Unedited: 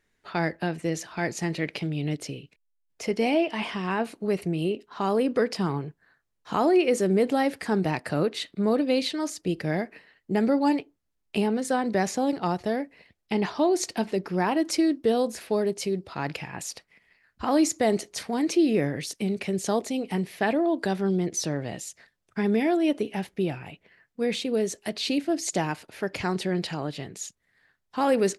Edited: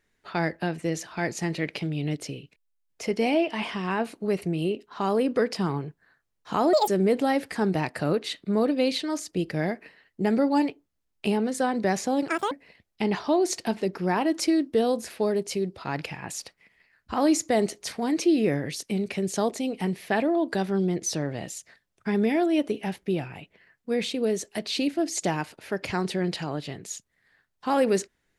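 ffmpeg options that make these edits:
ffmpeg -i in.wav -filter_complex "[0:a]asplit=5[link_01][link_02][link_03][link_04][link_05];[link_01]atrim=end=6.734[link_06];[link_02]atrim=start=6.73:end=6.98,asetpts=PTS-STARTPTS,asetrate=74970,aresample=44100,atrim=end_sample=6485,asetpts=PTS-STARTPTS[link_07];[link_03]atrim=start=6.976:end=12.384[link_08];[link_04]atrim=start=12.38:end=12.82,asetpts=PTS-STARTPTS,asetrate=82026,aresample=44100,atrim=end_sample=10432,asetpts=PTS-STARTPTS[link_09];[link_05]atrim=start=12.816[link_10];[link_06][link_07]acrossfade=duration=0.004:curve1=hsin:curve2=hsin[link_11];[link_11][link_08]acrossfade=duration=0.004:curve1=hsin:curve2=hsin[link_12];[link_12][link_09]acrossfade=duration=0.004:curve1=hsin:curve2=hsin[link_13];[link_13][link_10]acrossfade=duration=0.004:curve1=hsin:curve2=hsin" out.wav

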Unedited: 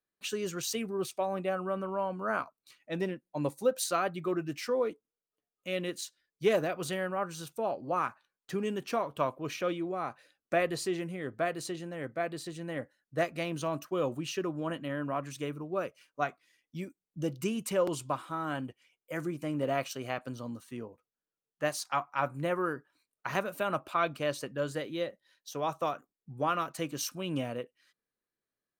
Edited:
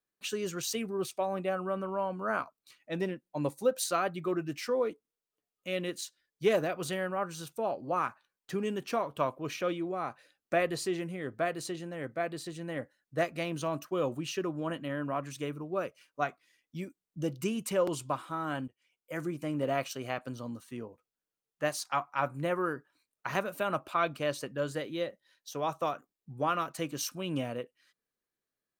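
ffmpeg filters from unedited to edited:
ffmpeg -i in.wav -filter_complex "[0:a]asplit=2[link_01][link_02];[link_01]atrim=end=18.68,asetpts=PTS-STARTPTS,afade=type=out:start_time=18.676:duration=0.004:curve=hsin:silence=0.0841395[link_03];[link_02]atrim=start=18.68,asetpts=PTS-STARTPTS,afade=type=in:duration=0.68:curve=qsin:silence=0.0841395[link_04];[link_03][link_04]concat=n=2:v=0:a=1" out.wav

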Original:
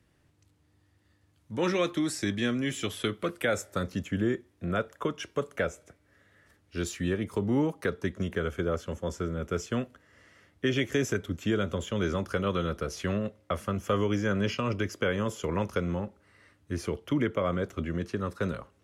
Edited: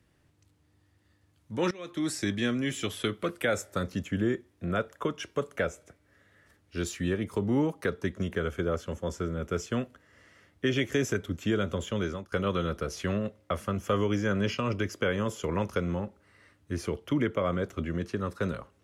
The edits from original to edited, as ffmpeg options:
ffmpeg -i in.wav -filter_complex "[0:a]asplit=3[link_01][link_02][link_03];[link_01]atrim=end=1.71,asetpts=PTS-STARTPTS,afade=type=out:start_time=1.706:duration=0.004:curve=hsin:silence=0.105925[link_04];[link_02]atrim=start=1.71:end=12.32,asetpts=PTS-STARTPTS,afade=type=in:duration=0.35:curve=qua:silence=0.105925,afade=type=out:start_time=10.24:duration=0.37:silence=0.0707946[link_05];[link_03]atrim=start=12.32,asetpts=PTS-STARTPTS,afade=type=in:duration=0.004:curve=hsin:silence=0.0707946[link_06];[link_04][link_05][link_06]concat=n=3:v=0:a=1" out.wav

